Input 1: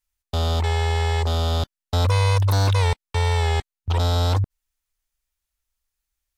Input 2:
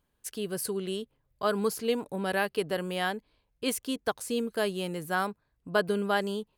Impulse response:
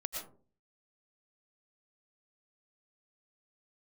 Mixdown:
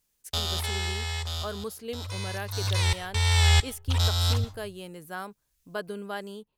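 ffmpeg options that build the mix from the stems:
-filter_complex "[0:a]tiltshelf=f=1300:g=-10,asubboost=boost=5.5:cutoff=150,volume=2.82,afade=t=out:st=0.78:d=0.5:silence=0.354813,afade=t=in:st=2.5:d=0.27:silence=0.281838,asplit=2[s0][s1];[s1]volume=0.15[s2];[1:a]highshelf=f=9800:g=5,volume=0.398,asplit=2[s3][s4];[s4]apad=whole_len=280995[s5];[s0][s5]sidechaincompress=threshold=0.00794:ratio=8:attack=23:release=542[s6];[2:a]atrim=start_sample=2205[s7];[s2][s7]afir=irnorm=-1:irlink=0[s8];[s6][s3][s8]amix=inputs=3:normalize=0"

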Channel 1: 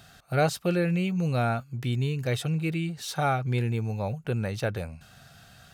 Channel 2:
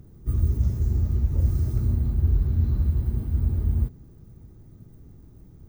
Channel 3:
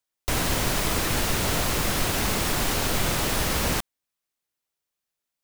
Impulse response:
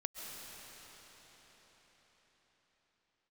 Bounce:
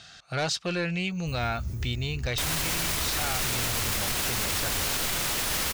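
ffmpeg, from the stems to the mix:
-filter_complex "[0:a]lowpass=f=6000:w=0.5412,lowpass=f=6000:w=1.3066,aemphasis=mode=production:type=cd,asoftclip=type=tanh:threshold=0.0944,volume=1.19,asplit=2[s0][s1];[1:a]adelay=1000,volume=1[s2];[2:a]adelay=2100,volume=1.06[s3];[s1]apad=whole_len=294614[s4];[s2][s4]sidechaincompress=threshold=0.02:ratio=8:attack=16:release=310[s5];[s0][s5][s3]amix=inputs=3:normalize=0,tiltshelf=f=1100:g=-5,alimiter=limit=0.119:level=0:latency=1"

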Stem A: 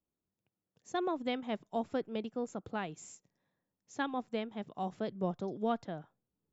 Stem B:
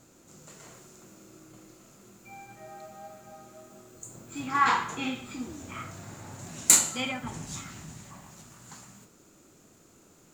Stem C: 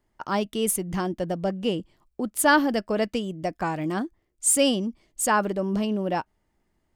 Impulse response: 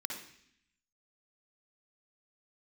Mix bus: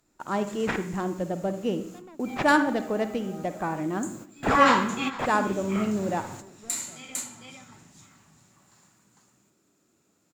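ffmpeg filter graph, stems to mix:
-filter_complex "[0:a]asoftclip=type=hard:threshold=0.0251,adelay=1000,volume=0.237,asplit=2[s0][s1];[s1]volume=0.251[s2];[1:a]highpass=79,volume=1.33,asplit=3[s3][s4][s5];[s4]volume=0.15[s6];[s5]volume=0.133[s7];[2:a]acrusher=samples=5:mix=1:aa=0.000001,adynamicsmooth=sensitivity=0.5:basefreq=2300,volume=0.631,asplit=3[s8][s9][s10];[s9]volume=0.562[s11];[s10]apad=whole_len=455606[s12];[s3][s12]sidechaingate=range=0.0224:threshold=0.00158:ratio=16:detection=peak[s13];[3:a]atrim=start_sample=2205[s14];[s6][s11]amix=inputs=2:normalize=0[s15];[s15][s14]afir=irnorm=-1:irlink=0[s16];[s2][s7]amix=inputs=2:normalize=0,aecho=0:1:453:1[s17];[s0][s13][s8][s16][s17]amix=inputs=5:normalize=0"

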